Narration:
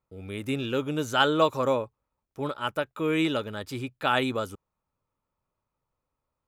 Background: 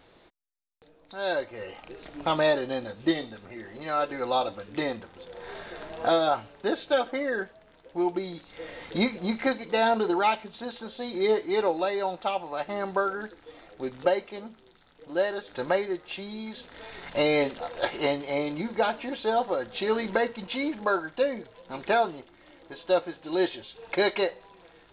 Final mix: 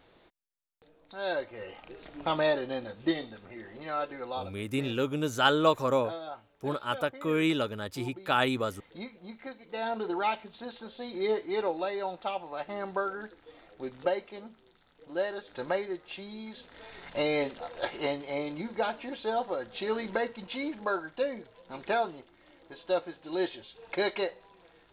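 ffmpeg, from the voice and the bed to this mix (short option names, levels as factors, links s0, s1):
-filter_complex "[0:a]adelay=4250,volume=0.841[s0];[1:a]volume=2.51,afade=t=out:st=3.75:d=0.88:silence=0.223872,afade=t=in:st=9.55:d=0.75:silence=0.266073[s1];[s0][s1]amix=inputs=2:normalize=0"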